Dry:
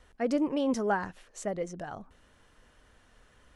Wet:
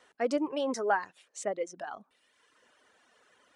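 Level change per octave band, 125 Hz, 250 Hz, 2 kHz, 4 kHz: -14.0, -5.5, +1.5, +1.5 dB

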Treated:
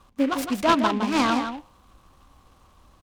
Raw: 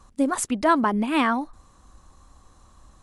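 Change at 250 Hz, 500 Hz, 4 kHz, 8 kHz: 0.0, 0.0, +5.5, -6.0 dB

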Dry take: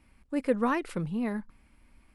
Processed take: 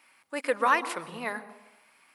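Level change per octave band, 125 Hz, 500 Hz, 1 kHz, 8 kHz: -14.5, 0.0, +7.5, +9.0 dB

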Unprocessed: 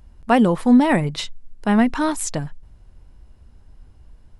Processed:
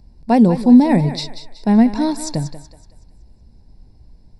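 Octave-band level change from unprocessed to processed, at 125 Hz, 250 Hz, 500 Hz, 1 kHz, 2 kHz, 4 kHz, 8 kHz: +5.5, +4.5, +1.0, -0.5, -6.5, +1.0, -2.5 dB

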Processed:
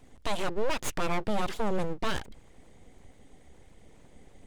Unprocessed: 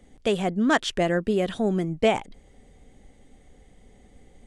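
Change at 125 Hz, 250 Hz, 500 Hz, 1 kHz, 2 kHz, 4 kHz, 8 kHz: -8.0, -11.0, -8.5, -4.5, -7.5, -6.0, -1.0 dB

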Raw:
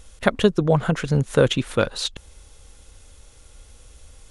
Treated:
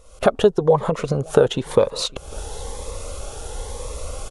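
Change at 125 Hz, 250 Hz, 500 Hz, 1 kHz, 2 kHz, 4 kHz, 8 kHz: -3.5, -2.5, +4.5, +3.5, -4.5, -0.5, +4.0 dB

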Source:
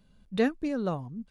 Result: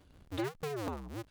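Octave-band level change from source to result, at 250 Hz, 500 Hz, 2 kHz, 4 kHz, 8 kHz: -11.0 dB, -8.5 dB, -8.0 dB, -3.5 dB, n/a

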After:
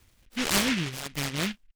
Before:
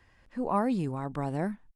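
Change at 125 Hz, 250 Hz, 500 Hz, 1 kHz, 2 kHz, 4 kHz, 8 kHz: -0.5 dB, 0.0 dB, -3.5 dB, -4.0 dB, +14.5 dB, +27.0 dB, n/a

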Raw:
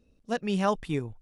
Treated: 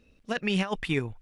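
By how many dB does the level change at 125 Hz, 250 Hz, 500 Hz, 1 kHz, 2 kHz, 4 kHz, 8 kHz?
+1.0, 0.0, -2.0, -5.5, +6.5, +6.5, 0.0 dB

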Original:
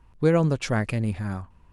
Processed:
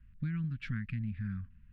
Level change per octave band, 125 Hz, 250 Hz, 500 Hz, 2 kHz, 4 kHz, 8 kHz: -10.0 dB, -12.0 dB, under -40 dB, -13.0 dB, -17.0 dB, under -30 dB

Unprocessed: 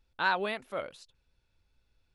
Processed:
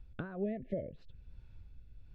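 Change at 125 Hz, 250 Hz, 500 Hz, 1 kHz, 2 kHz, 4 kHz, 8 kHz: +8.0 dB, +5.0 dB, -3.0 dB, -21.0 dB, -21.0 dB, under -25 dB, under -20 dB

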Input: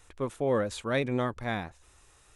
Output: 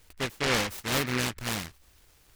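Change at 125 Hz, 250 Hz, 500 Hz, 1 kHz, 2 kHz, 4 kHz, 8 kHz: 0.0, -1.0, -5.0, +1.0, +6.0, +12.0, +13.5 dB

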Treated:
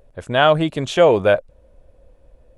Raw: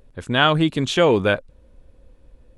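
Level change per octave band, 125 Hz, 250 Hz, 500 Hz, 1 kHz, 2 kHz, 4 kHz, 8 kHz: -1.5 dB, -2.0 dB, +5.0 dB, +2.5 dB, -0.5 dB, -2.5 dB, n/a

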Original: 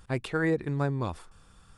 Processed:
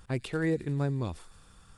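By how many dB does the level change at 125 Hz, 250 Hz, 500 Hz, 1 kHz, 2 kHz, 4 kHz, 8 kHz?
-0.5 dB, -1.0 dB, -3.0 dB, -6.5 dB, -5.0 dB, -1.0 dB, n/a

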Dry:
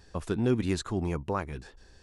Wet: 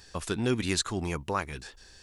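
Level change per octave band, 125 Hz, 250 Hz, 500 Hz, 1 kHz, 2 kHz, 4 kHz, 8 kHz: -2.5, -2.0, -1.5, +2.0, +5.5, +9.0, +10.0 dB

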